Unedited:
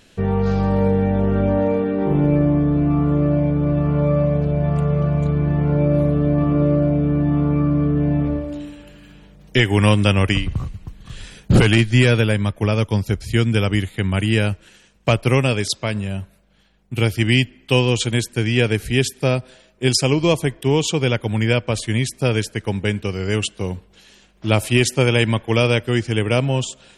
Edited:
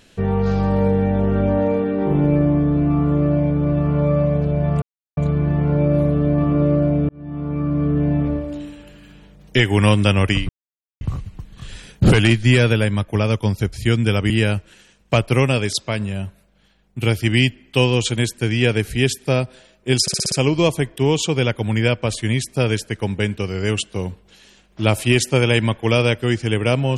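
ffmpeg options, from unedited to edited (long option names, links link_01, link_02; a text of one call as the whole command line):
ffmpeg -i in.wav -filter_complex "[0:a]asplit=11[link_01][link_02][link_03][link_04][link_05][link_06][link_07][link_08][link_09][link_10][link_11];[link_01]atrim=end=4.82,asetpts=PTS-STARTPTS,afade=type=out:start_time=4.816:duration=0.004:curve=hsin[link_12];[link_02]atrim=start=4.82:end=5.17,asetpts=PTS-STARTPTS,volume=0[link_13];[link_03]atrim=start=5.17:end=7.09,asetpts=PTS-STARTPTS,afade=type=in:duration=0.004:curve=hsin,afade=type=out:start_time=1.916:duration=0.004:curve=hsin[link_14];[link_04]atrim=start=7.09:end=10.49,asetpts=PTS-STARTPTS,afade=type=in:duration=0.84,afade=type=out:start_time=3.396:duration=0.004:curve=hsin,apad=pad_dur=0.52[link_15];[link_05]atrim=start=10.49:end=13.782,asetpts=PTS-STARTPTS,afade=type=in:duration=0.004:curve=hsin[link_16];[link_06]atrim=start=14.248:end=20.032[link_17];[link_07]atrim=start=19.968:end=20.032[link_18];[link_08]atrim=start=19.968:end=20.032[link_19];[link_09]atrim=start=19.968:end=20.032[link_20];[link_10]atrim=start=19.968:end=20.032[link_21];[link_11]atrim=start=19.968[link_22];[link_12][link_13][link_14][link_15][link_16]concat=n=5:v=0:a=1[link_23];[link_23][link_17]acrossfade=duration=0.004:curve1=hsin:curve2=hsin[link_24];[link_24][link_18]acrossfade=duration=0.004:curve1=hsin:curve2=hsin[link_25];[link_25][link_19]acrossfade=duration=0.004:curve1=hsin:curve2=hsin[link_26];[link_26][link_20]acrossfade=duration=0.004:curve1=hsin:curve2=hsin[link_27];[link_27][link_21]acrossfade=duration=0.004:curve1=hsin:curve2=hsin[link_28];[link_28][link_22]acrossfade=duration=0.004:curve1=hsin:curve2=hsin" out.wav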